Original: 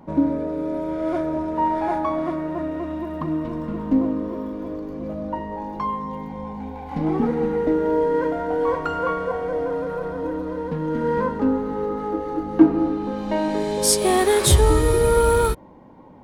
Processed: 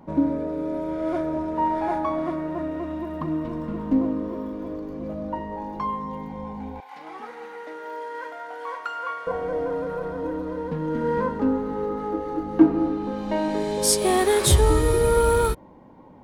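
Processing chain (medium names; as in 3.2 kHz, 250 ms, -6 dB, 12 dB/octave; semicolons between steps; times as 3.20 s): 6.80–9.27 s: high-pass 1.1 kHz 12 dB/octave; trim -2 dB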